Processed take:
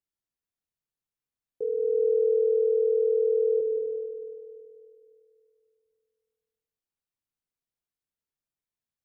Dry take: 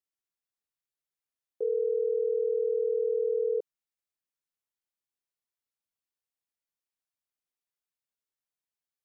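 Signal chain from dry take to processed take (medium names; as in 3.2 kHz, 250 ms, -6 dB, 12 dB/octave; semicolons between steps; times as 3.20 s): bass shelf 320 Hz +12 dB; on a send: reverberation RT60 2.6 s, pre-delay 161 ms, DRR 5 dB; on the sum: trim -4 dB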